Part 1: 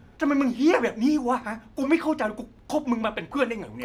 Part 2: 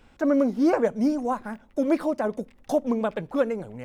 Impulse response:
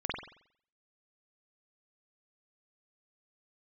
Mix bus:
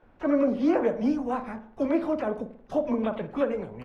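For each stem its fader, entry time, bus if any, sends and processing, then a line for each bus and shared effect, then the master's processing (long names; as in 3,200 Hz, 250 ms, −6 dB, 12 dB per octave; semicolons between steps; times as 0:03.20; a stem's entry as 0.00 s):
+1.0 dB, 0.00 s, no send, gate on every frequency bin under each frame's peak −15 dB weak; downward compressor, threshold −35 dBFS, peak gain reduction 10 dB
−4.0 dB, 23 ms, send −12 dB, no processing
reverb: on, pre-delay 45 ms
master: low-pass filter 1,300 Hz 6 dB per octave; one half of a high-frequency compander decoder only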